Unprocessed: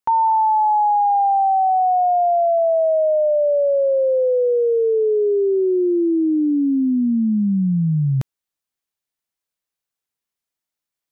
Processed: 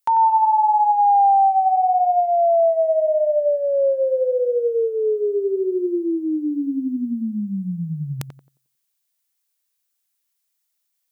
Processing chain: tilt +3.5 dB/oct; tape echo 91 ms, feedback 37%, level -6 dB, low-pass 1100 Hz

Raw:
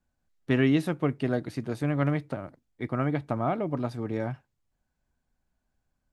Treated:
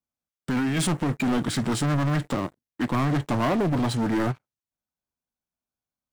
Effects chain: dynamic EQ 600 Hz, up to -5 dB, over -45 dBFS, Q 2.9; negative-ratio compressor -28 dBFS, ratio -1; formant shift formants -3 st; HPF 190 Hz 6 dB/oct; high shelf 6400 Hz +8 dB; sample leveller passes 5; ending taper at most 580 dB/s; gain -3.5 dB

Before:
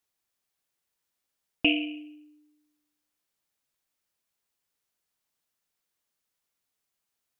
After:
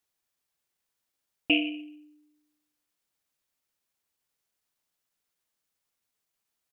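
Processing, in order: tempo 1.1×

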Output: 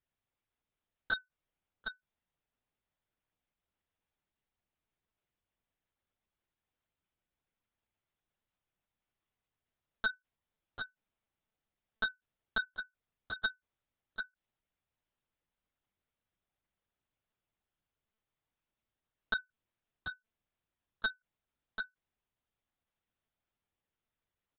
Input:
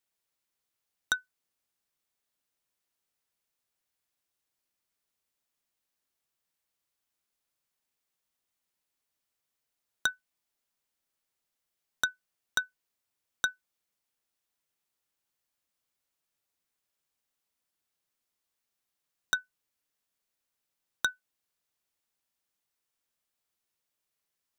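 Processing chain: tilt -2 dB/oct; echo 0.745 s -7.5 dB; monotone LPC vocoder at 8 kHz 220 Hz; gain -1.5 dB

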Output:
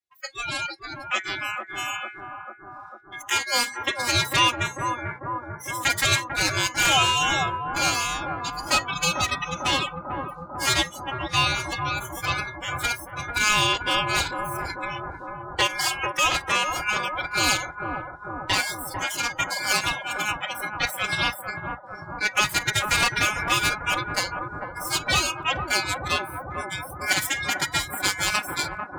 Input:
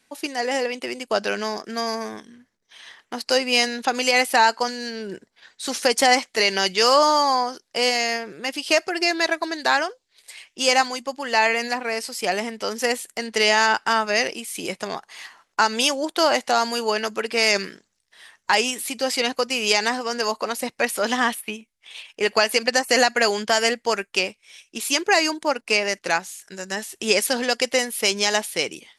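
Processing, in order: minimum comb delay 4.5 ms; de-hum 407 Hz, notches 12; ring modulator 1900 Hz; dynamic EQ 360 Hz, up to -3 dB, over -40 dBFS, Q 1.4; spectral noise reduction 27 dB; on a send: analogue delay 0.446 s, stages 4096, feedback 72%, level -4 dB

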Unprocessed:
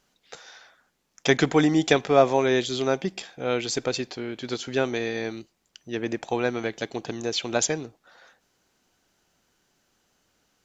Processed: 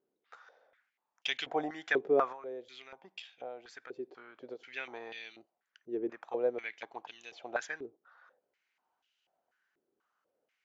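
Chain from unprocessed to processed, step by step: 2.32–4.7 compressor 6:1, threshold -30 dBFS, peak gain reduction 13.5 dB; stepped band-pass 4.1 Hz 390–2900 Hz; gain -1 dB

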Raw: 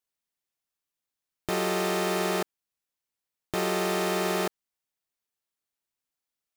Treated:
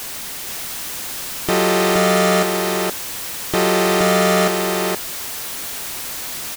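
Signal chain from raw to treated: zero-crossing step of -30.5 dBFS; echo 0.471 s -4 dB; gain +8.5 dB

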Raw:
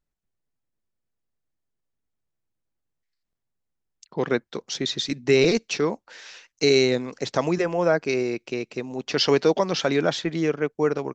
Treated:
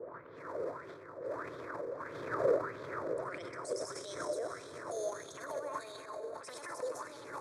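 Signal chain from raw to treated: speed glide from 103% -> 198%; wind noise 570 Hz -26 dBFS; Doppler pass-by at 2.44, 14 m/s, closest 1.9 m; low-pass opened by the level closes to 470 Hz, open at -46.5 dBFS; fixed phaser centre 780 Hz, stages 6; darkening echo 0.363 s, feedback 73%, low-pass 4500 Hz, level -23 dB; compressor 3:1, threshold -56 dBFS, peak gain reduction 27 dB; high shelf 5500 Hz +5.5 dB; reverb RT60 4.1 s, pre-delay 43 ms, DRR 4 dB; transient shaper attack -9 dB, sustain +11 dB; HPF 120 Hz 24 dB/oct; LFO bell 1.6 Hz 480–3500 Hz +16 dB; gain +8.5 dB

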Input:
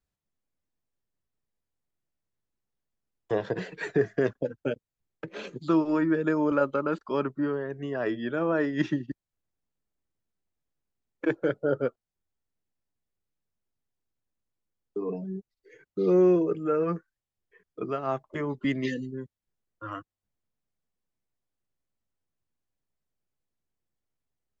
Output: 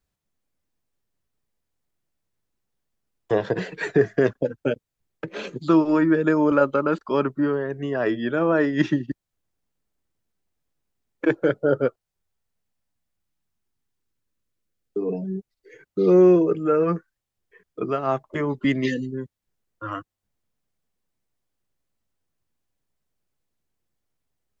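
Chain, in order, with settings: 11.87–15.3 bell 230 Hz -> 1200 Hz -12 dB 0.33 oct; gain +6 dB

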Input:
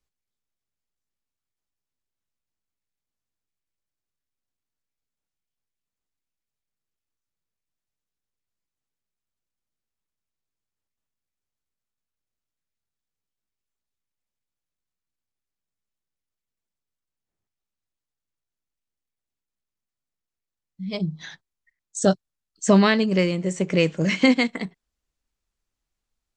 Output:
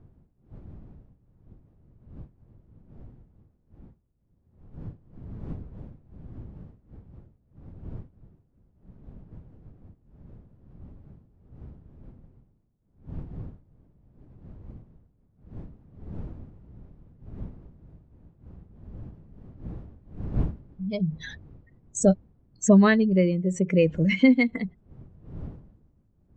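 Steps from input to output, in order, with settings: spectral contrast raised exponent 1.7; wind noise 140 Hz -42 dBFS

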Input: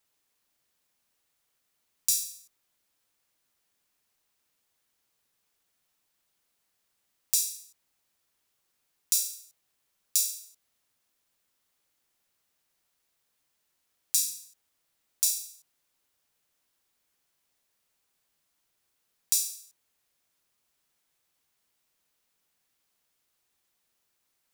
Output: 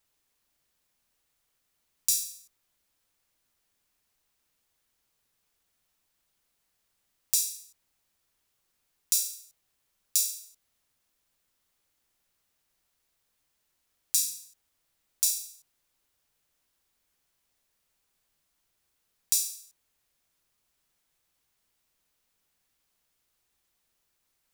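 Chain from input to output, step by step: low shelf 79 Hz +10.5 dB

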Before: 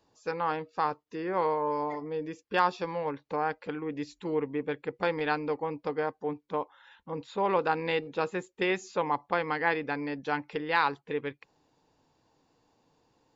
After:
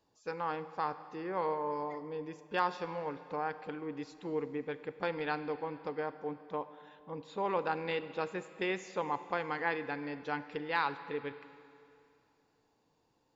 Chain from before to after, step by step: Schroeder reverb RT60 2.5 s, combs from 32 ms, DRR 12.5 dB; gain -6 dB

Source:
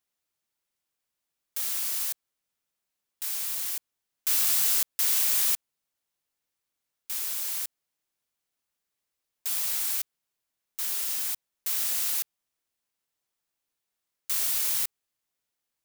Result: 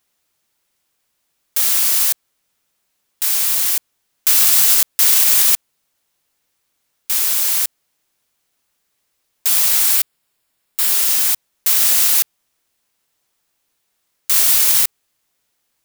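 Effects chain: 9.96–10.9 notch 6100 Hz, Q 7.7; maximiser +15.5 dB; gain -1 dB

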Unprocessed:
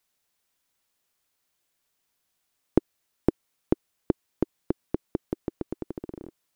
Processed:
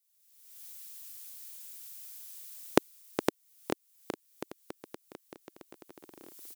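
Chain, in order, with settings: recorder AGC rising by 47 dB/s; differentiator; on a send: echo 0.414 s -10 dB; on the sum: gain -4 dB

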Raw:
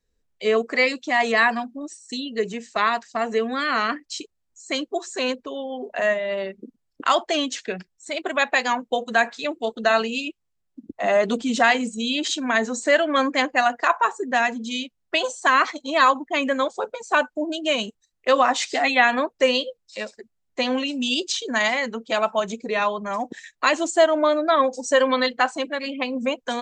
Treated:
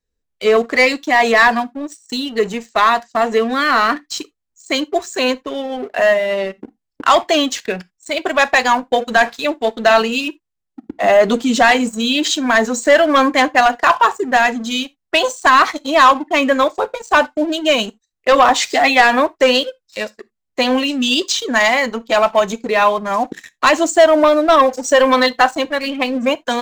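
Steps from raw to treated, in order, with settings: dynamic EQ 890 Hz, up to +3 dB, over -26 dBFS, Q 0.93; sample leveller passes 2; on a send: reverb, pre-delay 3 ms, DRR 18 dB

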